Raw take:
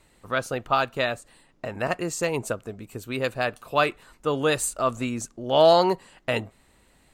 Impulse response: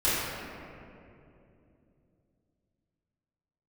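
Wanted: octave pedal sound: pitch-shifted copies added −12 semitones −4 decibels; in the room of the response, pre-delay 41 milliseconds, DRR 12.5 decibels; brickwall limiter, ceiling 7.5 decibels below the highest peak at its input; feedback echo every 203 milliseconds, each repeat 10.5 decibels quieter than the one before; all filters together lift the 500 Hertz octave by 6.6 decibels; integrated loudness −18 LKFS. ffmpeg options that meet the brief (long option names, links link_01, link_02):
-filter_complex "[0:a]equalizer=frequency=500:width_type=o:gain=8.5,alimiter=limit=-10dB:level=0:latency=1,aecho=1:1:203|406|609:0.299|0.0896|0.0269,asplit=2[link_01][link_02];[1:a]atrim=start_sample=2205,adelay=41[link_03];[link_02][link_03]afir=irnorm=-1:irlink=0,volume=-26.5dB[link_04];[link_01][link_04]amix=inputs=2:normalize=0,asplit=2[link_05][link_06];[link_06]asetrate=22050,aresample=44100,atempo=2,volume=-4dB[link_07];[link_05][link_07]amix=inputs=2:normalize=0,volume=3.5dB"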